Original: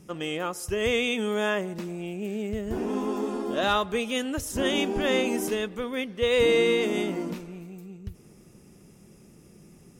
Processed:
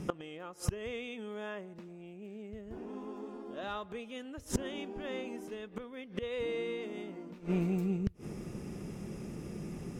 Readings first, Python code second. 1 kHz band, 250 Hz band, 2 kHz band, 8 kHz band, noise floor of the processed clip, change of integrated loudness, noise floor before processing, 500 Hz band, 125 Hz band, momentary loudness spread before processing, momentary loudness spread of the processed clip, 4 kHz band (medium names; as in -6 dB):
-13.5 dB, -8.5 dB, -16.0 dB, -10.5 dB, -51 dBFS, -13.0 dB, -53 dBFS, -13.5 dB, -1.0 dB, 13 LU, 11 LU, -17.5 dB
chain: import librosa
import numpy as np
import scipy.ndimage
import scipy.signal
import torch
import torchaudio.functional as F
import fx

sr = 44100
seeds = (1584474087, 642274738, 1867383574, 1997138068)

y = fx.lowpass(x, sr, hz=2800.0, slope=6)
y = fx.gate_flip(y, sr, shuts_db=-28.0, range_db=-25)
y = y * librosa.db_to_amplitude(10.5)